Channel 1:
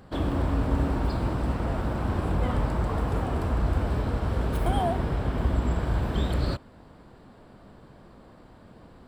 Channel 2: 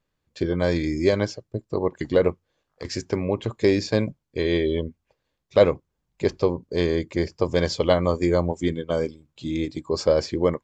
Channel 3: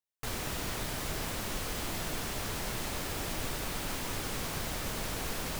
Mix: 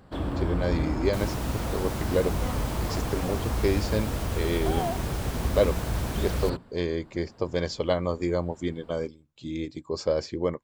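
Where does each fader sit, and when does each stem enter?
-3.0, -6.0, -2.5 dB; 0.00, 0.00, 0.90 s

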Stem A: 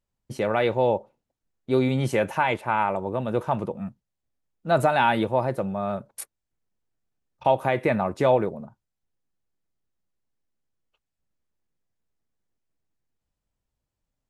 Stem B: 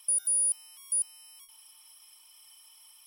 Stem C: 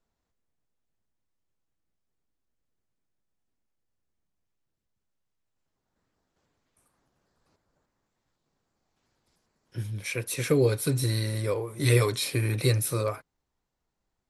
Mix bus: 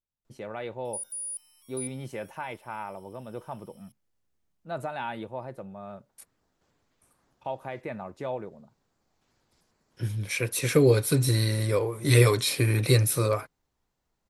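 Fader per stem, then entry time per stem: -13.5, -9.5, +3.0 dB; 0.00, 0.85, 0.25 s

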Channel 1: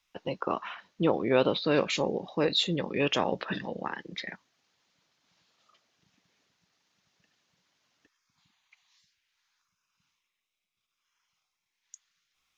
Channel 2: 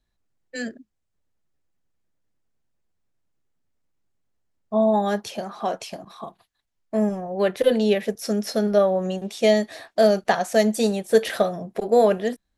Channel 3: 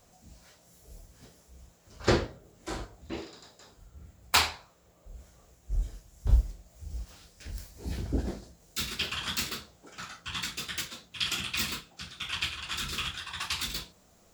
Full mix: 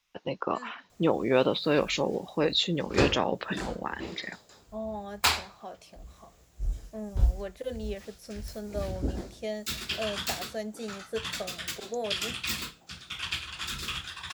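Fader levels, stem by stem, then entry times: +0.5, -17.0, -1.0 dB; 0.00, 0.00, 0.90 s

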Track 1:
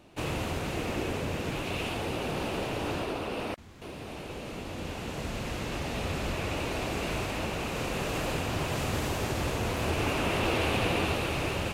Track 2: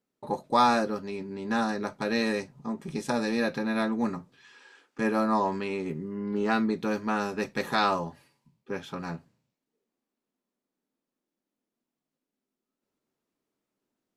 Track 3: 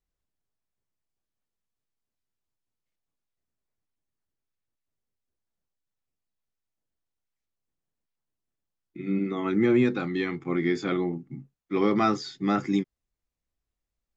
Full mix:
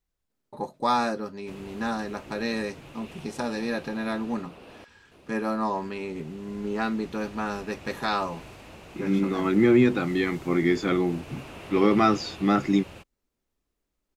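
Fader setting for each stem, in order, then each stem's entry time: -13.5, -2.0, +3.0 dB; 1.30, 0.30, 0.00 s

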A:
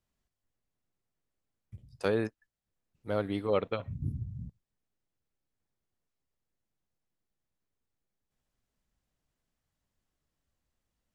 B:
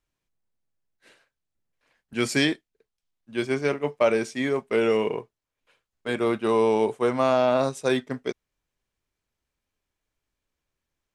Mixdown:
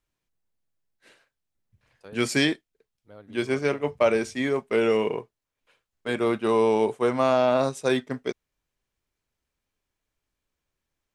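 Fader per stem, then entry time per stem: -16.5, 0.0 dB; 0.00, 0.00 s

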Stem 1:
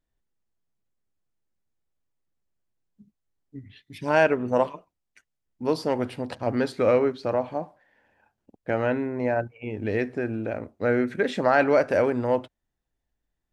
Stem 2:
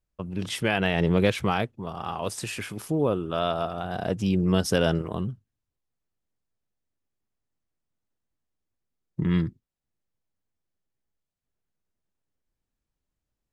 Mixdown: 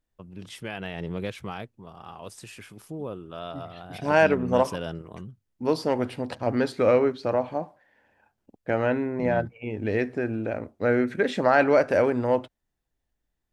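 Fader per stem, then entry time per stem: +0.5, -10.5 dB; 0.00, 0.00 s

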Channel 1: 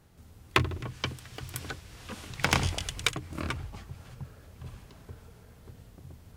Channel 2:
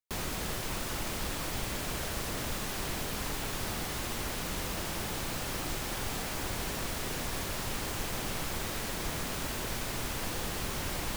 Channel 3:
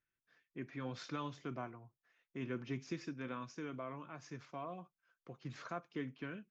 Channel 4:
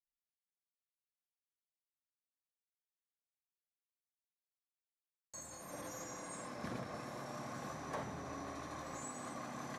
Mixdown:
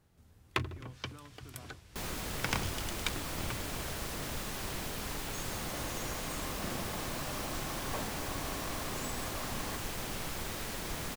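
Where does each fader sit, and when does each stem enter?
-8.5, -3.5, -12.0, +2.0 dB; 0.00, 1.85, 0.00, 0.00 s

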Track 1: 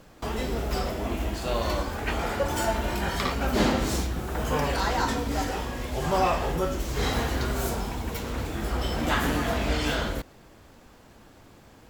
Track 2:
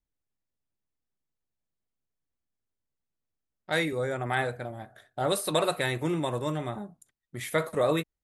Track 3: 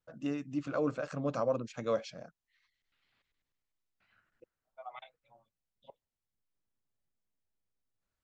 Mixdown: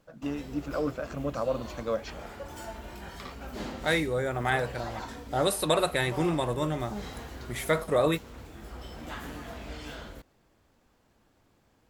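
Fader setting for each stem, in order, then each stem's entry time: -14.5, +1.0, +1.5 dB; 0.00, 0.15, 0.00 s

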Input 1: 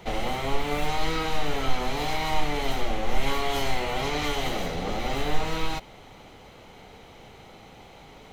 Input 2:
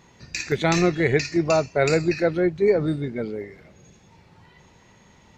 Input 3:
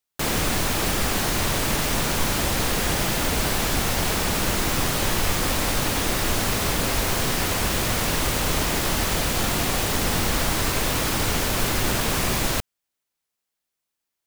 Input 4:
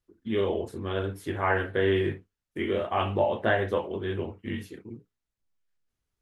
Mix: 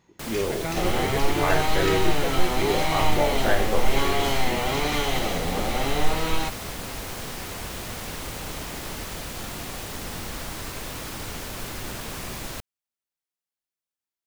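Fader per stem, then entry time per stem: +2.5, -10.5, -11.0, -0.5 dB; 0.70, 0.00, 0.00, 0.00 s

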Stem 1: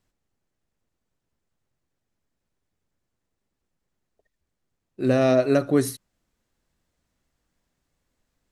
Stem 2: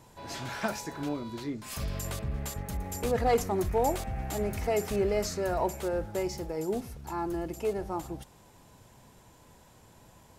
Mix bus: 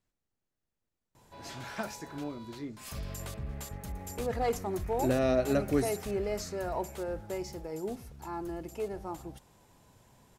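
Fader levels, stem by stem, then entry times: -8.0, -5.0 dB; 0.00, 1.15 s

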